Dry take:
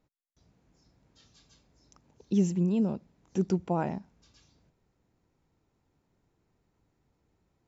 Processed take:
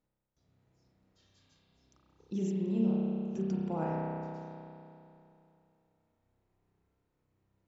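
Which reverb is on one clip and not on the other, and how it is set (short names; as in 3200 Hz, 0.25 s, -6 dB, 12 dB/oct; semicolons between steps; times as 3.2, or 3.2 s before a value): spring tank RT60 2.8 s, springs 31 ms, chirp 25 ms, DRR -5 dB; gain -10 dB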